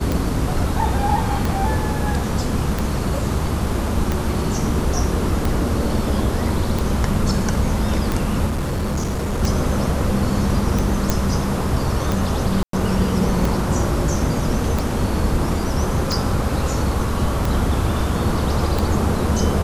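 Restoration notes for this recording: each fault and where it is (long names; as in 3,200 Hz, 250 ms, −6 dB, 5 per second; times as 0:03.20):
scratch tick 45 rpm
0:08.46–0:09.42: clipping −18.5 dBFS
0:11.10: click
0:12.63–0:12.73: drop-out 103 ms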